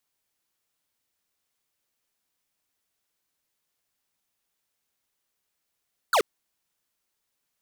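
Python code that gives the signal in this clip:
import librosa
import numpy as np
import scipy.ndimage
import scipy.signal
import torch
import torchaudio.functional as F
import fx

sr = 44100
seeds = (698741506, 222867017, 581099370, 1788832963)

y = fx.laser_zap(sr, level_db=-20.0, start_hz=1600.0, end_hz=360.0, length_s=0.08, wave='square')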